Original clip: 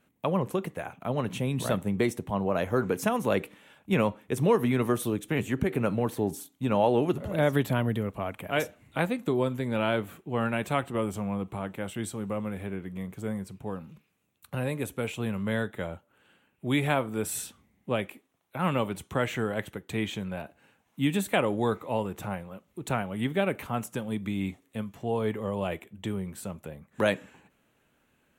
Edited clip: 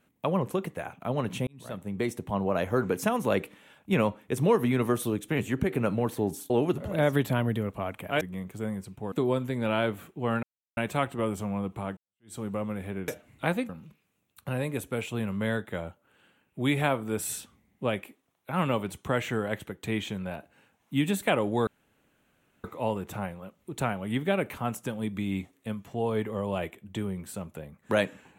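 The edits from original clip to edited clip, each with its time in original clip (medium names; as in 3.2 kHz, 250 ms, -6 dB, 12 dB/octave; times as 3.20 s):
1.47–2.32 s: fade in
6.50–6.90 s: delete
8.61–9.22 s: swap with 12.84–13.75 s
10.53 s: insert silence 0.34 s
11.73–12.11 s: fade in exponential
21.73 s: insert room tone 0.97 s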